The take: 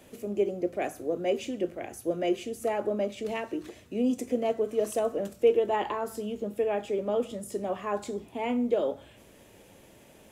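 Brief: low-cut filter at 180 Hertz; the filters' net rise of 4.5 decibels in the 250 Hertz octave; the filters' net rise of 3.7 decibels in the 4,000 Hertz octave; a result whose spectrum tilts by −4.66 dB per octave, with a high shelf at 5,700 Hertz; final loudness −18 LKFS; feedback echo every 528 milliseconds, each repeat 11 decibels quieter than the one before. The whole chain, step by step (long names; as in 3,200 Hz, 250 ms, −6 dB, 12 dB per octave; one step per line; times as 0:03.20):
high-pass filter 180 Hz
parametric band 250 Hz +6.5 dB
parametric band 4,000 Hz +8 dB
high-shelf EQ 5,700 Hz −6.5 dB
repeating echo 528 ms, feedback 28%, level −11 dB
level +10 dB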